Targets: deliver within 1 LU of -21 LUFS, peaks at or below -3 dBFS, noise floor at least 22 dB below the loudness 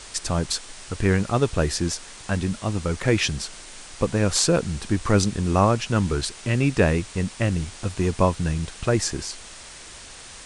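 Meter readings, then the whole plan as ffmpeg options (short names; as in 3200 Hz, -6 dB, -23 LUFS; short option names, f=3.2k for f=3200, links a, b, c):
noise floor -42 dBFS; noise floor target -46 dBFS; loudness -23.5 LUFS; peak -4.0 dBFS; loudness target -21.0 LUFS
-> -af "afftdn=nr=6:nf=-42"
-af "volume=2.5dB,alimiter=limit=-3dB:level=0:latency=1"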